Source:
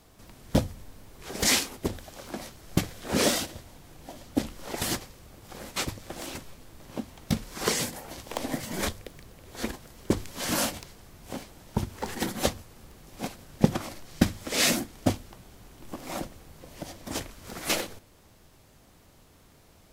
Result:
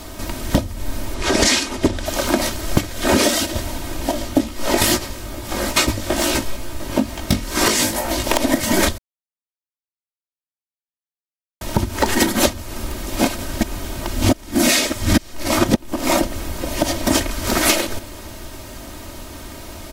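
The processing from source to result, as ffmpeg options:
ffmpeg -i in.wav -filter_complex "[0:a]asettb=1/sr,asplit=3[link_01][link_02][link_03];[link_01]atrim=end=1.144[link_04];[link_02]atrim=start=1.14:end=2.06,asetpts=PTS-STARTPTS,afade=type=in:duration=0.004:curve=qsin,afade=type=out:start_time=0.916:duration=0.004:curve=qsin,lowpass=7900[link_05];[link_03]atrim=start=2.056[link_06];[link_04][link_05]acrossfade=duration=0.004:curve1=hsin:curve2=qsin[link_07];[link_07][link_06]acrossfade=duration=0.004:curve1=qsin:curve2=hsin,asettb=1/sr,asplit=3[link_08][link_09][link_10];[link_08]atrim=end=4.114[link_11];[link_09]atrim=start=4.11:end=8.24,asetpts=PTS-STARTPTS,afade=type=in:duration=0.004:curve=qsin,afade=type=out:start_time=4.126:duration=0.004:curve=qsin,flanger=delay=16.5:depth=3.5:speed=2.3[link_12];[link_10]atrim=start=8.236[link_13];[link_11][link_12]acrossfade=duration=0.004:curve1=hsin:curve2=qsin[link_14];[link_14][link_13]acrossfade=duration=0.004:curve1=qsin:curve2=hsin,asplit=5[link_15][link_16][link_17][link_18][link_19];[link_15]atrim=end=8.98,asetpts=PTS-STARTPTS,afade=type=out:start_time=8.976:duration=0.004:curve=hsin[link_20];[link_16]atrim=start=8.98:end=11.61,asetpts=PTS-STARTPTS,volume=0[link_21];[link_17]atrim=start=11.61:end=13.632,asetpts=PTS-STARTPTS,afade=type=in:duration=0.004:curve=hsin[link_22];[link_18]atrim=start=13.628:end=15.762,asetpts=PTS-STARTPTS,areverse[link_23];[link_19]atrim=start=15.758[link_24];[link_20][link_21][link_22]concat=n=3:v=0:a=1[link_25];[link_25][link_23]acrossfade=duration=0.004:curve1=hsin:curve2=hsin[link_26];[link_26][link_24]acrossfade=duration=0.004:curve1=hsin:curve2=hsin,aecho=1:1:3.2:0.6,acompressor=threshold=-34dB:ratio=16,alimiter=level_in=22.5dB:limit=-1dB:release=50:level=0:latency=1,volume=-1dB" out.wav

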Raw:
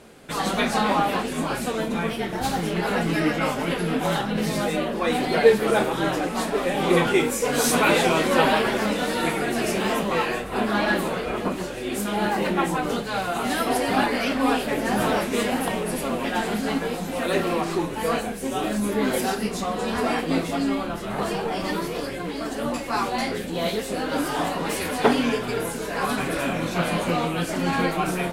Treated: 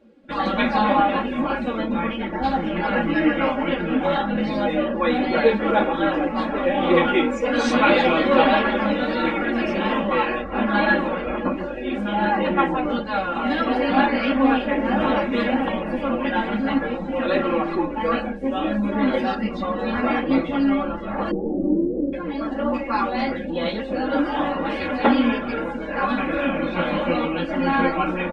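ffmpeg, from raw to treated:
ffmpeg -i in.wav -filter_complex "[0:a]asettb=1/sr,asplit=3[link_01][link_02][link_03];[link_01]atrim=end=21.314[link_04];[link_02]atrim=start=21.31:end=22.13,asetpts=PTS-STARTPTS,afade=type=in:duration=0.004:curve=qsin,afade=type=out:start_time=0.816:duration=0.004:curve=qsin,lowpass=frequency=350:width_type=q:width=2.4[link_05];[link_03]atrim=start=22.126[link_06];[link_04][link_05]acrossfade=duration=0.004:curve1=hsin:curve2=qsin[link_07];[link_07][link_06]acrossfade=duration=0.004:curve1=qsin:curve2=hsin,lowpass=3700,afftdn=noise_reduction=17:noise_floor=-39,aecho=1:1:3.6:0.88" out.wav

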